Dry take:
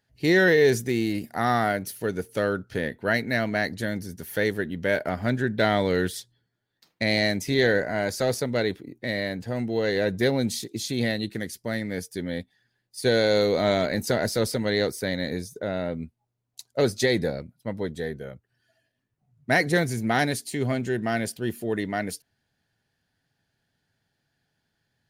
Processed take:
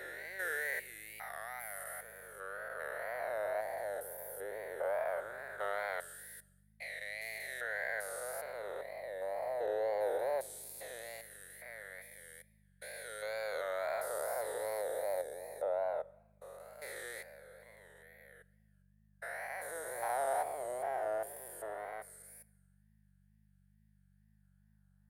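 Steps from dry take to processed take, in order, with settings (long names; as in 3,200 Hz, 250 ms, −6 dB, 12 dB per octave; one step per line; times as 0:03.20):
spectrum averaged block by block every 400 ms
drawn EQ curve 110 Hz 0 dB, 200 Hz −26 dB, 550 Hz +2 dB, 1,200 Hz −13 dB, 3,100 Hz −23 dB, 6,000 Hz −23 dB, 9,600 Hz −2 dB
four-comb reverb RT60 1.1 s, combs from 27 ms, DRR 19.5 dB
auto-filter high-pass sine 0.18 Hz 850–2,000 Hz
hum with harmonics 50 Hz, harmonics 4, −71 dBFS −2 dB per octave
tape wow and flutter 110 cents
level +2.5 dB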